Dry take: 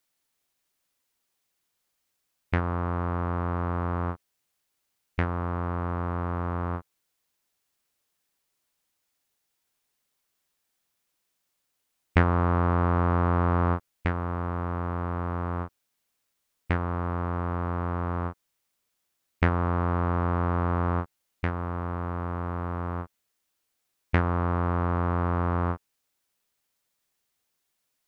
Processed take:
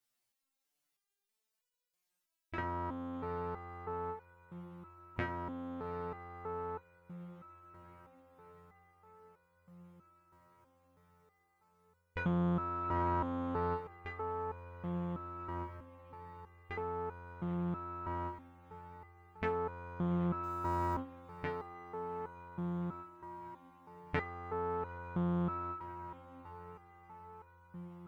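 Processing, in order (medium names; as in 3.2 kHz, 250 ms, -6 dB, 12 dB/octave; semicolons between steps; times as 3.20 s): 20.43–20.94 s: small samples zeroed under -36.5 dBFS; echo that smears into a reverb 802 ms, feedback 74%, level -15 dB; resonator arpeggio 3.1 Hz 120–490 Hz; trim +4 dB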